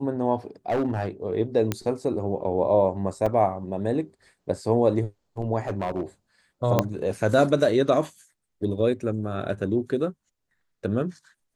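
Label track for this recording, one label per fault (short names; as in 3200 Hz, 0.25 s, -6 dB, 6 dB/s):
0.690000	1.090000	clipped -20 dBFS
1.720000	1.720000	pop -10 dBFS
3.260000	3.270000	gap 5.2 ms
5.670000	6.030000	clipped -22.5 dBFS
6.790000	6.790000	pop -6 dBFS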